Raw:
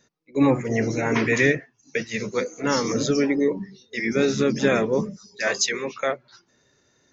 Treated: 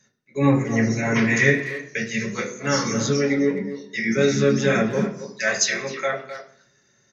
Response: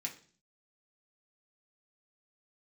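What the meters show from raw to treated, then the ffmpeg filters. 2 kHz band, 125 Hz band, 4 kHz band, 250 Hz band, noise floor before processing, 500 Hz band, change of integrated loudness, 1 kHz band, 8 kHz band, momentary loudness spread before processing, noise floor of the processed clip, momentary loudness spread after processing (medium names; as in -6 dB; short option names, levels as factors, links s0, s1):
+3.0 dB, +5.0 dB, +1.0 dB, +1.5 dB, -65 dBFS, 0.0 dB, +1.5 dB, 0.0 dB, no reading, 10 LU, -63 dBFS, 10 LU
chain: -filter_complex "[0:a]asplit=2[s0][s1];[s1]adelay=260,highpass=300,lowpass=3400,asoftclip=type=hard:threshold=0.168,volume=0.282[s2];[s0][s2]amix=inputs=2:normalize=0[s3];[1:a]atrim=start_sample=2205,asetrate=34839,aresample=44100[s4];[s3][s4]afir=irnorm=-1:irlink=0"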